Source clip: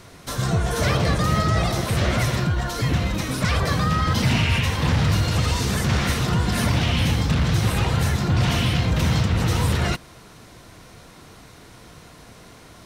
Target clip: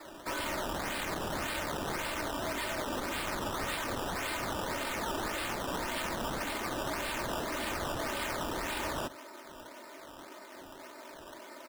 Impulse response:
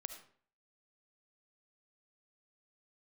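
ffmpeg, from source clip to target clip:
-af "highpass=f=380:t=q:w=0.5412,highpass=f=380:t=q:w=1.307,lowpass=f=2.4k:t=q:w=0.5176,lowpass=f=2.4k:t=q:w=0.7071,lowpass=f=2.4k:t=q:w=1.932,afreqshift=-57,aeval=exprs='0.0251*(abs(mod(val(0)/0.0251+3,4)-2)-1)':c=same,aecho=1:1:3.3:0.72,atempo=1.1,acrusher=samples=14:mix=1:aa=0.000001:lfo=1:lforange=14:lforate=1.8"

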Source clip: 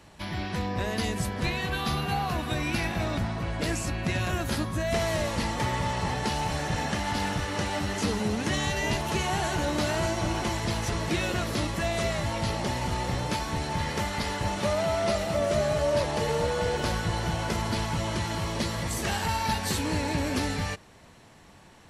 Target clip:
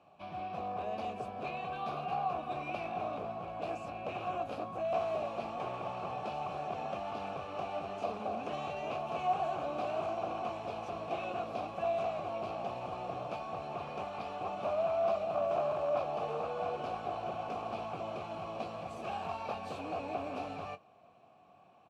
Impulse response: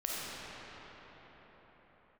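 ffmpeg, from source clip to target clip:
-filter_complex "[0:a]equalizer=f=130:w=0.42:g=13.5,aeval=exprs='0.178*(abs(mod(val(0)/0.178+3,4)-2)-1)':c=same,acrusher=bits=8:mode=log:mix=0:aa=0.000001,asplit=3[a][b][c];[a]bandpass=f=730:t=q:w=8,volume=0dB[d];[b]bandpass=f=1.09k:t=q:w=8,volume=-6dB[e];[c]bandpass=f=2.44k:t=q:w=8,volume=-9dB[f];[d][e][f]amix=inputs=3:normalize=0,asplit=2[g][h];[h]adelay=22,volume=-12dB[i];[g][i]amix=inputs=2:normalize=0"

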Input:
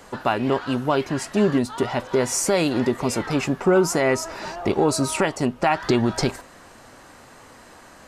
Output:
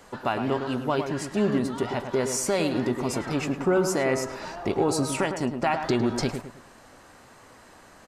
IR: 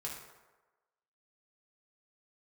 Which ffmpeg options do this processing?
-filter_complex "[0:a]asplit=2[a][b];[b]adelay=106,lowpass=f=1.6k:p=1,volume=-6.5dB,asplit=2[c][d];[d]adelay=106,lowpass=f=1.6k:p=1,volume=0.38,asplit=2[e][f];[f]adelay=106,lowpass=f=1.6k:p=1,volume=0.38,asplit=2[g][h];[h]adelay=106,lowpass=f=1.6k:p=1,volume=0.38[i];[a][c][e][g][i]amix=inputs=5:normalize=0,volume=-5dB"

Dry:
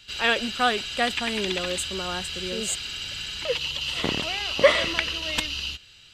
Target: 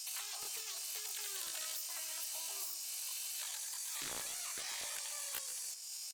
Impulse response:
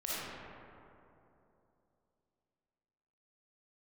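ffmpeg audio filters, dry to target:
-filter_complex "[0:a]bass=f=250:g=-14,treble=f=4k:g=11,acrossover=split=290|2100[a][b][c];[a]acrusher=bits=5:mix=0:aa=0.000001[d];[d][b][c]amix=inputs=3:normalize=0,asetrate=78577,aresample=44100,atempo=0.561231,acompressor=threshold=-38dB:ratio=6,highshelf=f=10k:g=-4,afftfilt=real='re*lt(hypot(re,im),0.0126)':imag='im*lt(hypot(re,im),0.0126)':win_size=1024:overlap=0.75,bandreject=f=176.8:t=h:w=4,bandreject=f=353.6:t=h:w=4,bandreject=f=530.4:t=h:w=4,bandreject=f=707.2:t=h:w=4,bandreject=f=884:t=h:w=4,bandreject=f=1.0608k:t=h:w=4,bandreject=f=1.2376k:t=h:w=4,bandreject=f=1.4144k:t=h:w=4,bandreject=f=1.5912k:t=h:w=4,bandreject=f=1.768k:t=h:w=4,bandreject=f=1.9448k:t=h:w=4,bandreject=f=2.1216k:t=h:w=4,bandreject=f=2.2984k:t=h:w=4,bandreject=f=2.4752k:t=h:w=4,bandreject=f=2.652k:t=h:w=4,bandreject=f=2.8288k:t=h:w=4,bandreject=f=3.0056k:t=h:w=4,bandreject=f=3.1824k:t=h:w=4,bandreject=f=3.3592k:t=h:w=4,bandreject=f=3.536k:t=h:w=4,bandreject=f=3.7128k:t=h:w=4,asplit=2[e][f];[f]asplit=3[g][h][i];[g]adelay=137,afreqshift=-30,volume=-11.5dB[j];[h]adelay=274,afreqshift=-60,volume=-21.7dB[k];[i]adelay=411,afreqshift=-90,volume=-31.8dB[l];[j][k][l]amix=inputs=3:normalize=0[m];[e][m]amix=inputs=2:normalize=0,volume=4dB"

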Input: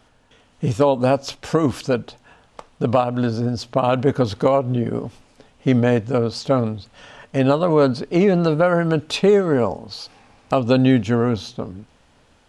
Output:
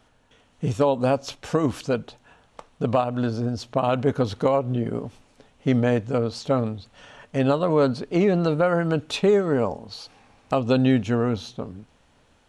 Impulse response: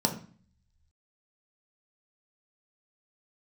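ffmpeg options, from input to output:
-af "bandreject=f=4.9k:w=15,volume=-4dB"

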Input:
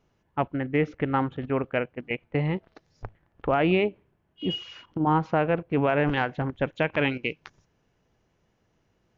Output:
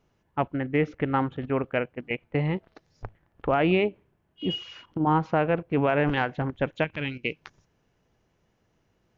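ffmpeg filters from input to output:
-filter_complex "[0:a]asettb=1/sr,asplit=3[a][b][c];[a]atrim=end=6.844[d];[b]atrim=start=6.84:end=7.25,asetpts=PTS-STARTPTS,afade=t=in:d=0.004:c=qsin,afade=t=out:st=0.406:d=0.004:c=qsin,equalizer=f=750:t=o:w=2.7:g=-14[e];[c]atrim=start=7.246[f];[d][e]acrossfade=d=0.004:c1=hsin:c2=qsin[g];[g][f]acrossfade=d=0.004:c1=qsin:c2=hsin"

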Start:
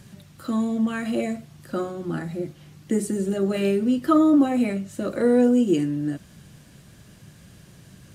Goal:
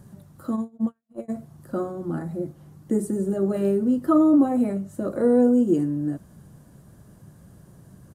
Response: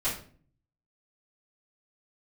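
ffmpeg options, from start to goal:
-filter_complex "[0:a]asplit=3[a][b][c];[a]afade=t=out:st=0.55:d=0.02[d];[b]agate=range=-59dB:threshold=-21dB:ratio=16:detection=peak,afade=t=in:st=0.55:d=0.02,afade=t=out:st=1.28:d=0.02[e];[c]afade=t=in:st=1.28:d=0.02[f];[d][e][f]amix=inputs=3:normalize=0,firequalizer=gain_entry='entry(1000,0);entry(2400,-17);entry(10000,-3)':delay=0.05:min_phase=1"

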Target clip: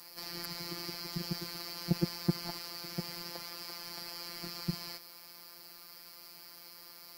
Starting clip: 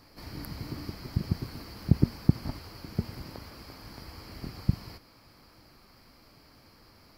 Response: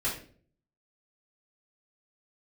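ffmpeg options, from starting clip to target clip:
-filter_complex "[0:a]afftfilt=real='hypot(re,im)*cos(PI*b)':imag='0':win_size=1024:overlap=0.75,aemphasis=mode=production:type=riaa,acrossover=split=7800[a][b];[b]acompressor=threshold=-49dB:ratio=4:attack=1:release=60[c];[a][c]amix=inputs=2:normalize=0,volume=4dB"

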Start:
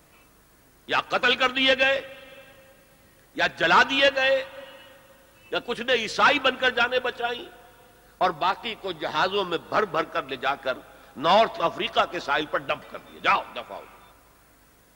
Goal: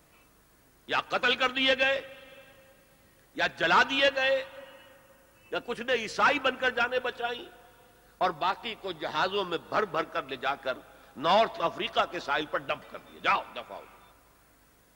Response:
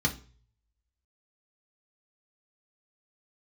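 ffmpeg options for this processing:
-filter_complex "[0:a]asettb=1/sr,asplit=3[a][b][c];[a]atrim=end=4.584[d];[b]atrim=start=4.58:end=7,asetpts=PTS-STARTPTS,afade=t=in:d=0.004:c=qsin,afade=t=out:st=2.416:d=0.004:c=qsin,equalizer=f=3.6k:w=3.1:g=-7[e];[c]atrim=start=6.996[f];[d][e]acrossfade=d=0.004:c1=hsin:c2=qsin[g];[g][f]acrossfade=d=0.004:c1=qsin:c2=hsin,volume=-4.5dB"

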